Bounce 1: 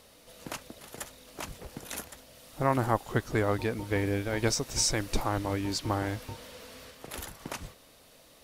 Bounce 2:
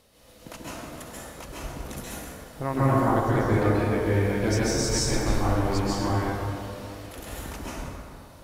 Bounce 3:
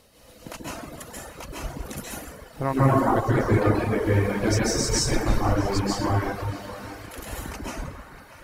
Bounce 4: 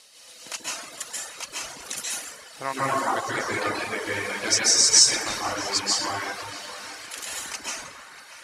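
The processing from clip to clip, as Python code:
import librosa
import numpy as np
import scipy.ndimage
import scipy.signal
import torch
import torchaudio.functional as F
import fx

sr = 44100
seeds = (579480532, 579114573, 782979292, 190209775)

y1 = fx.low_shelf(x, sr, hz=370.0, db=5.0)
y1 = fx.rev_plate(y1, sr, seeds[0], rt60_s=2.4, hf_ratio=0.45, predelay_ms=120, drr_db=-8.0)
y1 = y1 * 10.0 ** (-5.5 / 20.0)
y2 = fx.notch(y1, sr, hz=3500.0, q=19.0)
y2 = fx.dereverb_blind(y2, sr, rt60_s=1.2)
y2 = fx.echo_banded(y2, sr, ms=640, feedback_pct=77, hz=1700.0, wet_db=-13)
y2 = y2 * 10.0 ** (4.0 / 20.0)
y3 = fx.weighting(y2, sr, curve='ITU-R 468')
y3 = y3 * 10.0 ** (-1.0 / 20.0)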